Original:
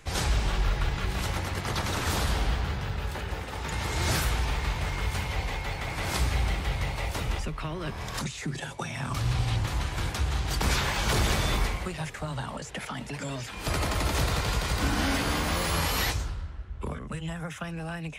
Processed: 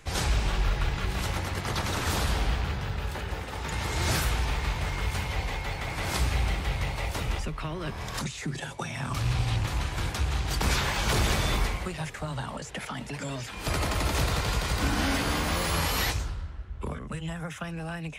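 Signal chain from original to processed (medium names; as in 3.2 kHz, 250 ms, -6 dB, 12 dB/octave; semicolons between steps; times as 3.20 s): rattle on loud lows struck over -25 dBFS, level -30 dBFS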